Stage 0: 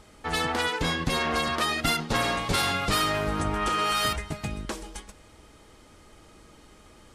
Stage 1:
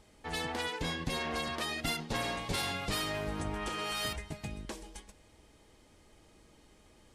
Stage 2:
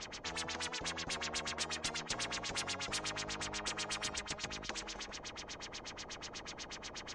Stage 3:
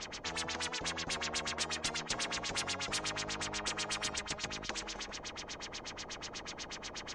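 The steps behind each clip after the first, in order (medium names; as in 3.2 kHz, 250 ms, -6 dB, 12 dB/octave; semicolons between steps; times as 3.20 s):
peaking EQ 1.3 kHz -7.5 dB 0.35 oct; trim -8 dB
LFO low-pass sine 8.2 Hz 570–5100 Hz; four-pole ladder low-pass 7.1 kHz, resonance 65%; spectrum-flattening compressor 4:1; trim +4.5 dB
hum notches 60/120 Hz; trim +2.5 dB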